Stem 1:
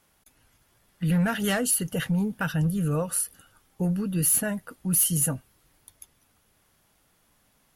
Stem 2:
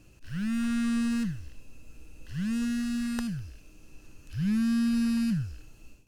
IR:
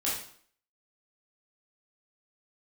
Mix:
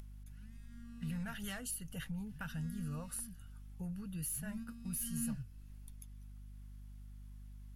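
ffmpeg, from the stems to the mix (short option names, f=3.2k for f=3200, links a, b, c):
-filter_complex "[0:a]equalizer=f=400:w=0.81:g=-11.5,acompressor=threshold=-31dB:ratio=2,aeval=exprs='val(0)+0.00398*(sin(2*PI*50*n/s)+sin(2*PI*2*50*n/s)/2+sin(2*PI*3*50*n/s)/3+sin(2*PI*4*50*n/s)/4+sin(2*PI*5*50*n/s)/5)':c=same,volume=-12dB,asplit=2[a][b];[1:a]asplit=2[c][d];[d]adelay=3.4,afreqshift=1.6[e];[c][e]amix=inputs=2:normalize=1,volume=-12.5dB,afade=t=in:st=4.79:d=0.53:silence=0.446684[f];[b]apad=whole_len=267871[g];[f][g]sidechaingate=range=-9dB:threshold=-54dB:ratio=16:detection=peak[h];[a][h]amix=inputs=2:normalize=0,lowshelf=f=91:g=10,acompressor=mode=upward:threshold=-45dB:ratio=2.5"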